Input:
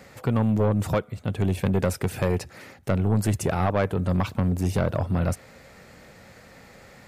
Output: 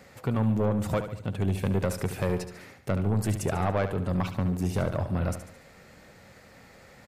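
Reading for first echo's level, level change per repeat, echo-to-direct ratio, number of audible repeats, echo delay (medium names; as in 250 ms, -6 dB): -10.0 dB, -6.5 dB, -9.0 dB, 4, 72 ms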